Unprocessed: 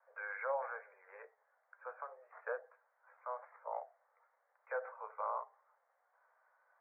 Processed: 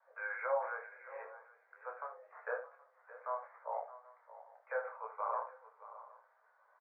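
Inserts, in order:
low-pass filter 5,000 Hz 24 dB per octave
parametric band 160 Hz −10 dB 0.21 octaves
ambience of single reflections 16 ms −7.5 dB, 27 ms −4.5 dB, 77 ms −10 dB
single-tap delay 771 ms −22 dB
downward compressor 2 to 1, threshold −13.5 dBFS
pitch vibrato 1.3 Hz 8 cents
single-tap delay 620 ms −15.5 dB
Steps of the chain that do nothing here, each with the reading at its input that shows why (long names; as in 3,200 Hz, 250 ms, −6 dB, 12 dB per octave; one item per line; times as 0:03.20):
low-pass filter 5,000 Hz: nothing at its input above 1,900 Hz
parametric band 160 Hz: nothing at its input below 380 Hz
downward compressor, threshold −13.5 dBFS: peak of its input −23.5 dBFS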